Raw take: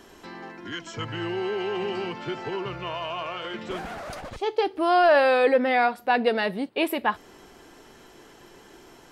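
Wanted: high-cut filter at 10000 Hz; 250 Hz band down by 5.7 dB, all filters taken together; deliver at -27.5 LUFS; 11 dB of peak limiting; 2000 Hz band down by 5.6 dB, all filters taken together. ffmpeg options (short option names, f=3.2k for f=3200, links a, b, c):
-af "lowpass=10k,equalizer=f=250:t=o:g=-8,equalizer=f=2k:t=o:g=-7.5,volume=6dB,alimiter=limit=-17.5dB:level=0:latency=1"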